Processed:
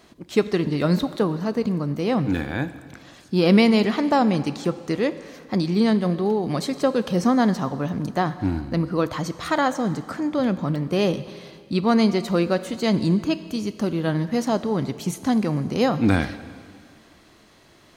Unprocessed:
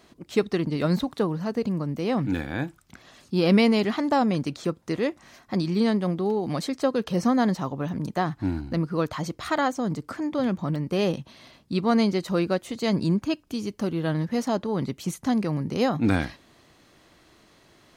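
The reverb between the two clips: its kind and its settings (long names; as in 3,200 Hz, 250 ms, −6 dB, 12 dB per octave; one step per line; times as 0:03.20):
dense smooth reverb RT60 2 s, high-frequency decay 1×, DRR 12.5 dB
level +3 dB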